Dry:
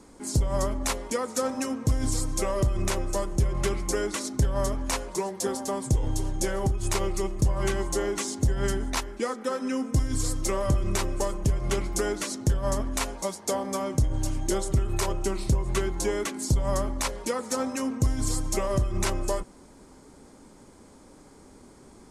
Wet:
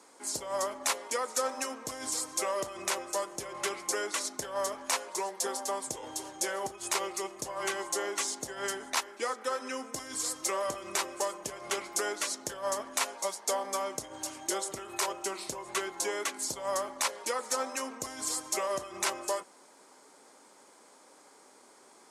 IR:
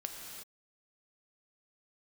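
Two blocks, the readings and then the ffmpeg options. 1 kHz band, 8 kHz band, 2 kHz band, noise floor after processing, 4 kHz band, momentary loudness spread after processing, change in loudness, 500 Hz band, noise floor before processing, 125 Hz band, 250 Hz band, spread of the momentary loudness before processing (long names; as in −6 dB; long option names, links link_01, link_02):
−0.5 dB, 0.0 dB, 0.0 dB, −58 dBFS, 0.0 dB, 5 LU, −5.0 dB, −5.5 dB, −52 dBFS, −29.0 dB, −14.0 dB, 4 LU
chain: -af "highpass=610"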